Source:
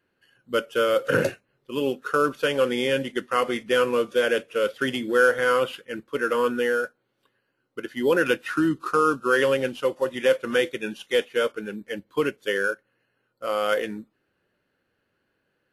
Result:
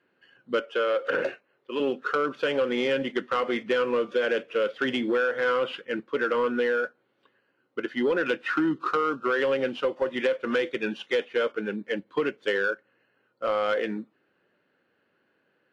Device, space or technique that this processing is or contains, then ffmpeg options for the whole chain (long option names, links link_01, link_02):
AM radio: -filter_complex "[0:a]highpass=180,lowpass=3400,acompressor=threshold=-24dB:ratio=5,asoftclip=type=tanh:threshold=-20dB,asettb=1/sr,asplit=3[link_01][link_02][link_03];[link_01]atrim=end=0.604[link_04];[link_02]atrim=start=0.6:end=1.8,asetpts=PTS-STARTPTS,afade=type=in:duration=0.004:curve=qsin,afade=type=out:start_time=1.196:duration=0.004:curve=qsin,bass=frequency=250:gain=-13,treble=frequency=4000:gain=-4[link_05];[link_03]atrim=start=1.796[link_06];[link_04][link_05]acrossfade=duration=0.004:curve1=hsin:curve2=qsin[link_07];[link_07][link_06]acrossfade=duration=0.004:curve1=qsin:curve2=hsin,volume=4dB"